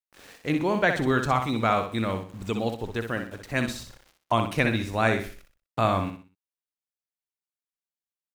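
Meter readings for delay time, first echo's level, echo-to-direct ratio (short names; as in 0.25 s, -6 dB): 62 ms, -7.0 dB, -6.5 dB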